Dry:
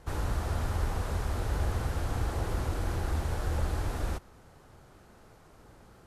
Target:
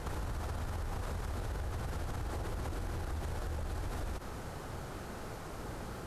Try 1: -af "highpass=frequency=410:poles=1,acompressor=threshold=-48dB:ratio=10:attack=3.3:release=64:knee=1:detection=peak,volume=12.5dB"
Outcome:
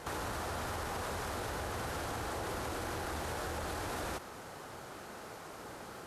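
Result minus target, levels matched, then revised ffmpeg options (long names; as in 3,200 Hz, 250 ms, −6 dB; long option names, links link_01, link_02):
500 Hz band +2.5 dB
-af "acompressor=threshold=-48dB:ratio=10:attack=3.3:release=64:knee=1:detection=peak,volume=12.5dB"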